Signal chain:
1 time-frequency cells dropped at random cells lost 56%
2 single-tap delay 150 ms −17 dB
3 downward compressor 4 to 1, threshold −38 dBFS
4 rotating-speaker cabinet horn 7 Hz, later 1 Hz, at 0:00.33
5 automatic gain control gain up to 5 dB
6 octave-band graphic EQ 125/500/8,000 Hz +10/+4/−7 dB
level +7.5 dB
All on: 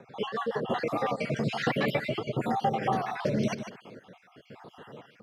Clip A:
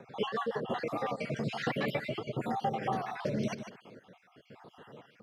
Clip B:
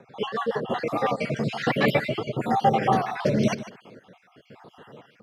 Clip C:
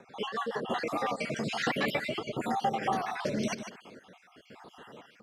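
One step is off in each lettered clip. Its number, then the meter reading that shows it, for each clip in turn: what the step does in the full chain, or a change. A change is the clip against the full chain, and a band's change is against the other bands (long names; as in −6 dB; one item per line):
5, change in momentary loudness spread −1 LU
3, average gain reduction 2.5 dB
6, change in integrated loudness −2.5 LU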